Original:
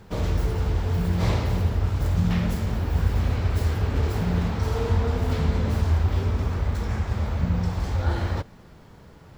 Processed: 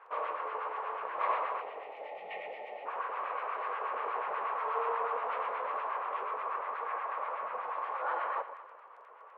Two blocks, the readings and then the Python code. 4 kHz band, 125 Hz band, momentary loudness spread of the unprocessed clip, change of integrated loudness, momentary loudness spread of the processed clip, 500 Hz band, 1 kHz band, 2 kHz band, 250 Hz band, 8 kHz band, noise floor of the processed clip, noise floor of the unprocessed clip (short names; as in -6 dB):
-16.0 dB, under -40 dB, 4 LU, -10.5 dB, 11 LU, -6.5 dB, +4.0 dB, -3.0 dB, under -30 dB, n/a, -54 dBFS, -48 dBFS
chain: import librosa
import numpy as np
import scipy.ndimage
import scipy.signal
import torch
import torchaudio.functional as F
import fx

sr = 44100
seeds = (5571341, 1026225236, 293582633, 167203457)

y = scipy.signal.sosfilt(scipy.signal.cheby1(3, 1.0, [490.0, 2700.0], 'bandpass', fs=sr, output='sos'), x)
y = fx.spec_box(y, sr, start_s=1.61, length_s=1.25, low_hz=900.0, high_hz=1800.0, gain_db=-24)
y = fx.peak_eq(y, sr, hz=1100.0, db=13.5, octaves=0.31)
y = fx.dmg_crackle(y, sr, seeds[0], per_s=15.0, level_db=-45.0)
y = fx.filter_lfo_bandpass(y, sr, shape='sine', hz=8.3, low_hz=670.0, high_hz=1600.0, q=0.8)
y = fx.echo_alternate(y, sr, ms=112, hz=900.0, feedback_pct=55, wet_db=-9)
y = y * 10.0 ** (-1.0 / 20.0)